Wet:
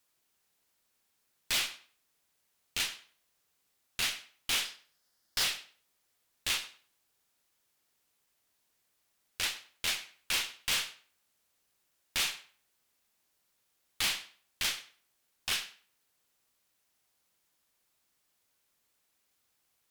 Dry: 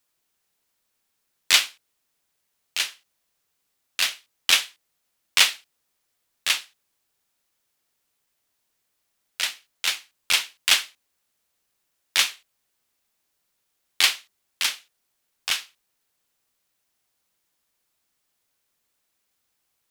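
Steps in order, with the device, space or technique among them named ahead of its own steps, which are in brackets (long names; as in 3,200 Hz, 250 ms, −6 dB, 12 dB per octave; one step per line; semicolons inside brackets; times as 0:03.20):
0:04.65–0:05.44: thirty-one-band graphic EQ 1,600 Hz +4 dB, 2,500 Hz −9 dB, 5,000 Hz +9 dB
rockabilly slapback (tube saturation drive 27 dB, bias 0.35; tape delay 99 ms, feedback 23%, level −13 dB, low-pass 4,100 Hz)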